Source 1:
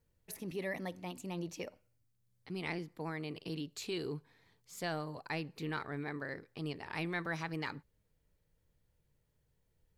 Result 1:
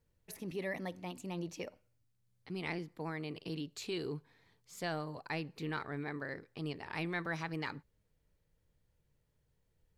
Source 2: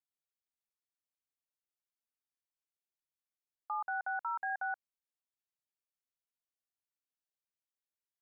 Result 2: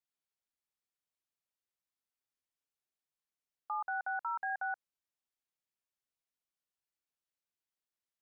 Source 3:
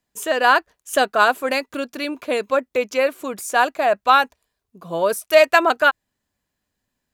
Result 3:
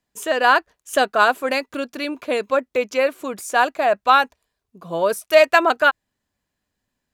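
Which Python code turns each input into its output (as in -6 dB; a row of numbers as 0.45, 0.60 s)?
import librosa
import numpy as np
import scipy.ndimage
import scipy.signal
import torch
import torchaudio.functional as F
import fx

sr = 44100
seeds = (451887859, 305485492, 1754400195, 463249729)

y = fx.high_shelf(x, sr, hz=9400.0, db=-5.0)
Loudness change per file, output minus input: 0.0, 0.0, 0.0 LU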